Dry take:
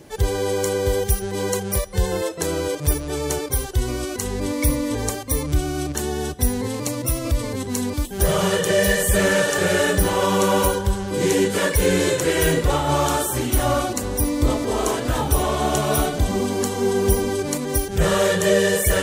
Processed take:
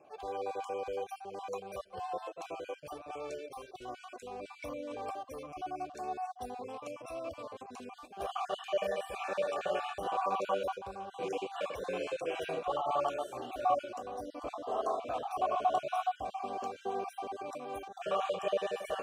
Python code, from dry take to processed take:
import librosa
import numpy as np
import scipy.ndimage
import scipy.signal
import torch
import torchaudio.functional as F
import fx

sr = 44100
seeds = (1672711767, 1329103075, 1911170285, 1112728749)

y = fx.spec_dropout(x, sr, seeds[0], share_pct=32)
y = fx.vowel_filter(y, sr, vowel='a')